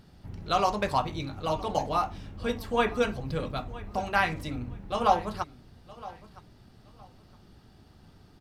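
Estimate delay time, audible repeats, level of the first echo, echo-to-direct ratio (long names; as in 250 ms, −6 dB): 965 ms, 2, −19.0 dB, −19.0 dB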